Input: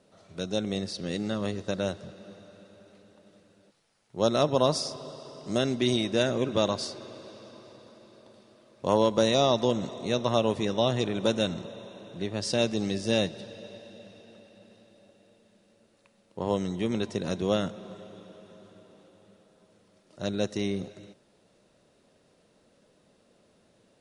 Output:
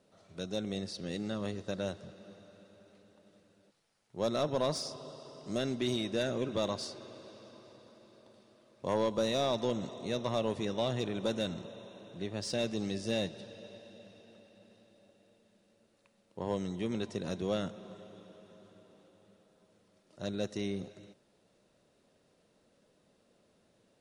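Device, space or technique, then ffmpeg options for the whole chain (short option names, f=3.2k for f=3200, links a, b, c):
saturation between pre-emphasis and de-emphasis: -af "highshelf=f=3.1k:g=12,asoftclip=type=tanh:threshold=-15dB,highshelf=f=3.1k:g=-12,volume=-5.5dB"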